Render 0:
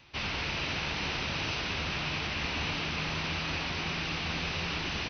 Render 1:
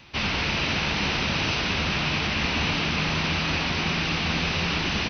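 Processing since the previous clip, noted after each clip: bell 210 Hz +5 dB 0.54 oct; gain +7.5 dB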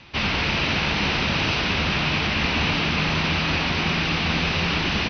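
LPF 5300 Hz 12 dB/oct; gain +3 dB

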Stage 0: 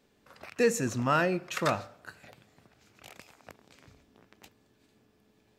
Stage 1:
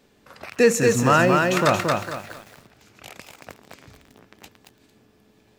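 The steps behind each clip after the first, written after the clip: lo-fi delay 0.227 s, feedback 35%, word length 9-bit, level -3 dB; gain +8.5 dB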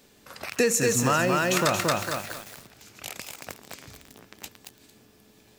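high shelf 4100 Hz +11 dB; compressor 4:1, threshold -20 dBFS, peak gain reduction 8.5 dB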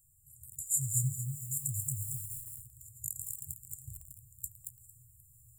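vocal rider within 4 dB 2 s; FFT band-reject 150–7000 Hz

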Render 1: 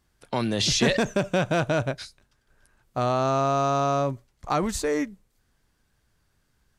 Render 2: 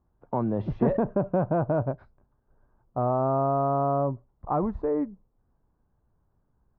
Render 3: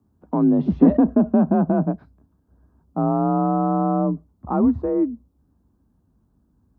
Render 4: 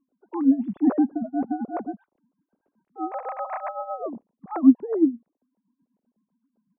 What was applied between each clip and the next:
Chebyshev low-pass 1000 Hz, order 3
frequency shift +41 Hz; ten-band EQ 125 Hz -5 dB, 250 Hz +9 dB, 500 Hz -6 dB, 1000 Hz -4 dB, 2000 Hz -7 dB; gain +6.5 dB
sine-wave speech; tremolo 7.9 Hz, depth 74%; gain -1.5 dB

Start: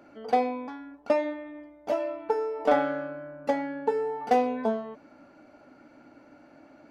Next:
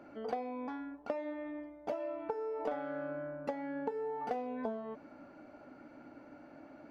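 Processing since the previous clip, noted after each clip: compressor 10:1, threshold -34 dBFS, peak gain reduction 17.5 dB; high shelf 3400 Hz -9 dB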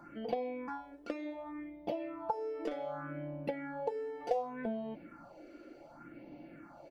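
comb 5.8 ms, depth 51%; phaser stages 4, 0.67 Hz, lowest notch 140–1400 Hz; gain +4.5 dB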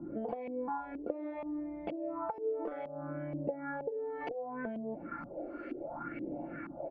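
compressor 8:1, threshold -46 dBFS, peak gain reduction 19 dB; LFO low-pass saw up 2.1 Hz 300–2500 Hz; gain +8.5 dB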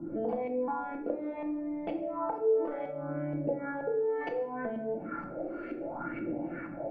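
shoebox room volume 170 m³, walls mixed, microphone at 0.65 m; gain +2 dB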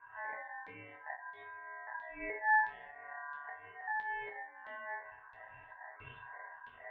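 LFO low-pass saw down 1.5 Hz 330–2400 Hz; resonator bank D2 fifth, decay 0.21 s; ring modulator 1300 Hz; gain -5.5 dB

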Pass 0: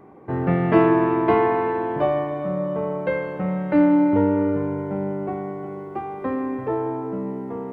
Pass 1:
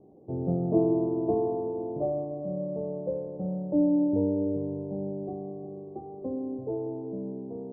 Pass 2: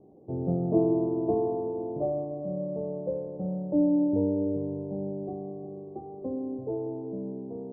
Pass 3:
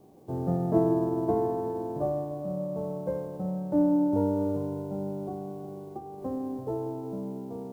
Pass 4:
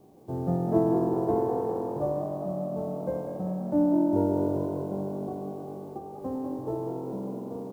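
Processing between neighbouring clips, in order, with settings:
steep low-pass 690 Hz 36 dB/oct; gain -7 dB
nothing audible
spectral whitening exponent 0.6
frequency-shifting echo 0.196 s, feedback 55%, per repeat +45 Hz, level -8.5 dB

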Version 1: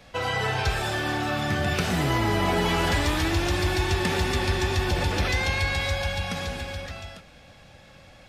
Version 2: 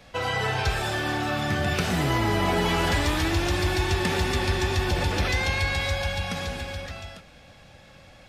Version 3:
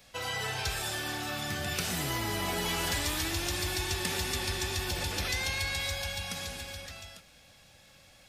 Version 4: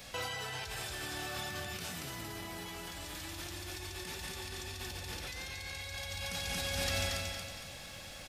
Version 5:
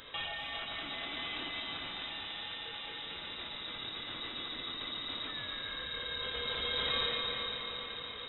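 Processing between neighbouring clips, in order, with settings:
nothing audible
pre-emphasis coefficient 0.8; gain +3 dB
feedback echo 0.23 s, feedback 42%, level -4 dB; negative-ratio compressor -41 dBFS, ratio -1
inverted band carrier 3800 Hz; diffused feedback echo 0.454 s, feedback 57%, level -6 dB

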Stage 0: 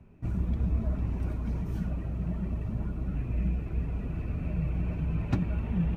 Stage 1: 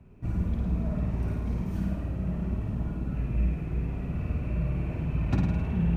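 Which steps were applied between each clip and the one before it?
flutter echo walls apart 9.1 m, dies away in 0.99 s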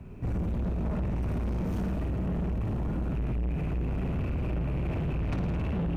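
compressor, threshold -26 dBFS, peak gain reduction 6.5 dB; soft clip -36 dBFS, distortion -8 dB; gain +9 dB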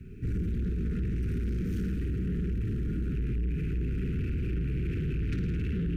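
elliptic band-stop 420–1500 Hz, stop band 60 dB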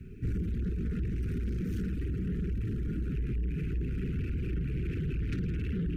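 reverb removal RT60 0.65 s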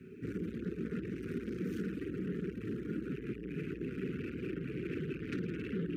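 HPF 300 Hz 12 dB/oct; high shelf 2200 Hz -9 dB; gain +5 dB

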